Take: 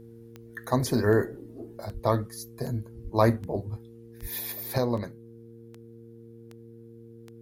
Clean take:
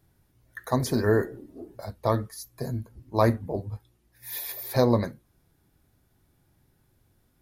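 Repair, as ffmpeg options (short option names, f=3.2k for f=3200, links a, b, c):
-filter_complex "[0:a]adeclick=t=4,bandreject=f=115.3:t=h:w=4,bandreject=f=230.6:t=h:w=4,bandreject=f=345.9:t=h:w=4,bandreject=f=461.2:t=h:w=4,asplit=3[a][b][c];[a]afade=t=out:st=1.93:d=0.02[d];[b]highpass=f=140:w=0.5412,highpass=f=140:w=1.3066,afade=t=in:st=1.93:d=0.02,afade=t=out:st=2.05:d=0.02[e];[c]afade=t=in:st=2.05:d=0.02[f];[d][e][f]amix=inputs=3:normalize=0,asplit=3[g][h][i];[g]afade=t=out:st=3.03:d=0.02[j];[h]highpass=f=140:w=0.5412,highpass=f=140:w=1.3066,afade=t=in:st=3.03:d=0.02,afade=t=out:st=3.15:d=0.02[k];[i]afade=t=in:st=3.15:d=0.02[l];[j][k][l]amix=inputs=3:normalize=0,asplit=3[m][n][o];[m]afade=t=out:st=4.21:d=0.02[p];[n]highpass=f=140:w=0.5412,highpass=f=140:w=1.3066,afade=t=in:st=4.21:d=0.02,afade=t=out:st=4.33:d=0.02[q];[o]afade=t=in:st=4.33:d=0.02[r];[p][q][r]amix=inputs=3:normalize=0,asetnsamples=n=441:p=0,asendcmd='4.78 volume volume 6dB',volume=0dB"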